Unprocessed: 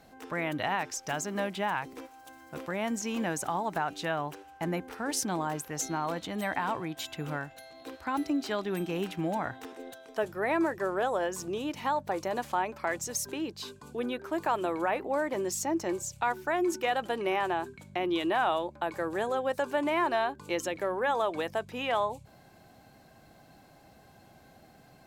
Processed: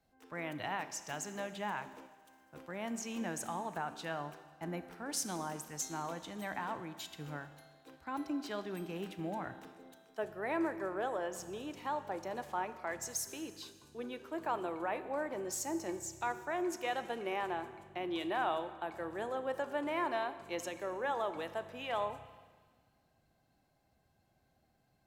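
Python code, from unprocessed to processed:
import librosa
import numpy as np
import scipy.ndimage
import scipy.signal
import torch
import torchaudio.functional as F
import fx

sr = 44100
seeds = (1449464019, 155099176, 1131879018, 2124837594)

y = fx.rev_schroeder(x, sr, rt60_s=2.4, comb_ms=27, drr_db=10.5)
y = fx.band_widen(y, sr, depth_pct=40)
y = y * 10.0 ** (-8.0 / 20.0)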